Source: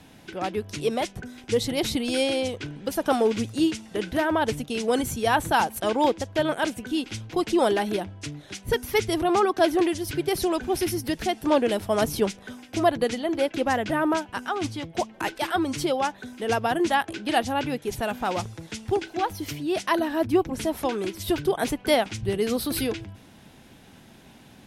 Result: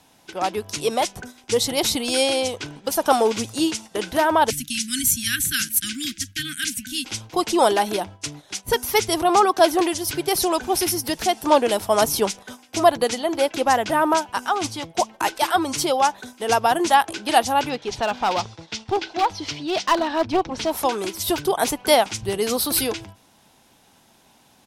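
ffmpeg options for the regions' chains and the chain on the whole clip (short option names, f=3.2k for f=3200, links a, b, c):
-filter_complex "[0:a]asettb=1/sr,asplit=3[a][b][c];[a]atrim=end=4.504[d];[b]atrim=start=4.5:end=7.05,asetpts=PTS-STARTPTS,afade=t=in:d=0.004:c=qsin,afade=t=out:st=2.546:d=0.004:c=qsin,asuperstop=centerf=660:order=12:qfactor=0.51,highshelf=f=7.3k:g=7.5[e];[c]atrim=start=7.046[f];[d][e]acrossfade=d=0.004:c1=hsin:c2=qsin[g];[g][f]acrossfade=d=0.004:c1=qsin:c2=hsin,asettb=1/sr,asplit=3[h][i][j];[h]atrim=end=17.694[k];[i]atrim=start=17.69:end=20.71,asetpts=PTS-STARTPTS,afade=t=in:d=0.004:c=qsin,afade=t=out:st=3.016:d=0.004:c=qsin,lowpass=f=4.5k:w=0.5412,lowpass=f=4.5k:w=1.3066,aemphasis=mode=production:type=50fm,aeval=exprs='clip(val(0),-1,0.0708)':c=same[l];[j]atrim=start=20.706[m];[k][l]acrossfade=d=0.004:c1=hsin:c2=qsin[n];[n][m]acrossfade=d=0.004:c1=qsin:c2=hsin,agate=range=-9dB:threshold=-39dB:ratio=16:detection=peak,firequalizer=gain_entry='entry(140,0);entry(910,12);entry(1700,5);entry(5500,13)':delay=0.05:min_phase=1,volume=-2.5dB"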